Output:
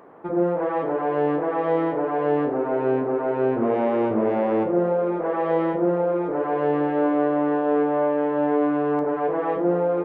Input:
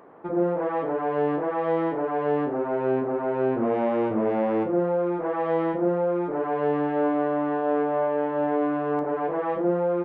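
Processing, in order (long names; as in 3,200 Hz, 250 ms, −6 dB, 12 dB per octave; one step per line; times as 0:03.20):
feedback echo with a band-pass in the loop 245 ms, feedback 84%, band-pass 450 Hz, level −14.5 dB
level +2 dB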